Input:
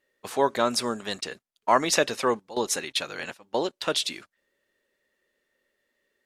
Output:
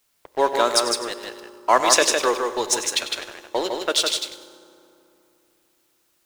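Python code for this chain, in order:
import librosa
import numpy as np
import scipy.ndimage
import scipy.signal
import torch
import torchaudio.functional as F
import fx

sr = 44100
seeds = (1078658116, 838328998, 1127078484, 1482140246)

y = scipy.signal.sosfilt(scipy.signal.butter(4, 300.0, 'highpass', fs=sr, output='sos'), x)
y = fx.env_lowpass(y, sr, base_hz=500.0, full_db=-22.0)
y = scipy.signal.sosfilt(scipy.signal.butter(2, 8800.0, 'lowpass', fs=sr, output='sos'), y)
y = fx.high_shelf(y, sr, hz=6100.0, db=11.0)
y = np.sign(y) * np.maximum(np.abs(y) - 10.0 ** (-37.0 / 20.0), 0.0)
y = fx.quant_dither(y, sr, seeds[0], bits=12, dither='triangular')
y = y + 10.0 ** (-4.5 / 20.0) * np.pad(y, (int(157 * sr / 1000.0), 0))[:len(y)]
y = fx.rev_fdn(y, sr, rt60_s=2.9, lf_ratio=1.3, hf_ratio=0.55, size_ms=17.0, drr_db=14.5)
y = fx.echo_crushed(y, sr, ms=97, feedback_pct=35, bits=8, wet_db=-13)
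y = y * 10.0 ** (4.0 / 20.0)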